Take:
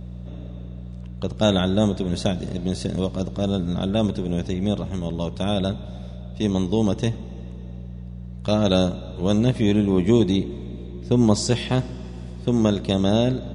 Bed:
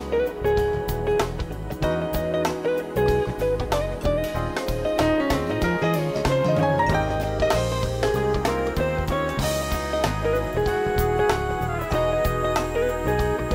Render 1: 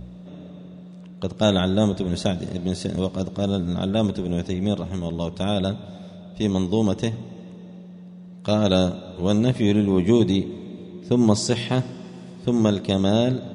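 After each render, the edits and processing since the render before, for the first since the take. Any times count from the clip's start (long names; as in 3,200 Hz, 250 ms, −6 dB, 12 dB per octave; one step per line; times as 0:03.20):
hum removal 60 Hz, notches 2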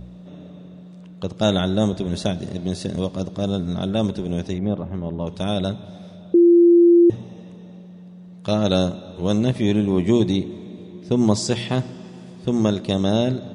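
0:04.58–0:05.27: low-pass filter 1,700 Hz
0:06.34–0:07.10: beep over 344 Hz −8.5 dBFS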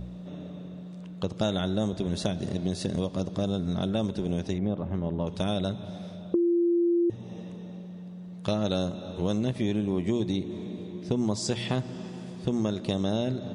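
downward compressor 4 to 1, threshold −25 dBFS, peak gain reduction 12 dB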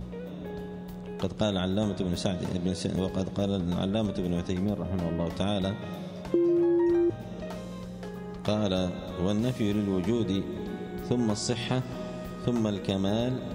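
mix in bed −19.5 dB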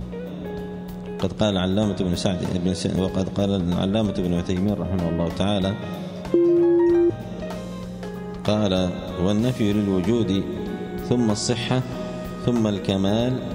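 level +6.5 dB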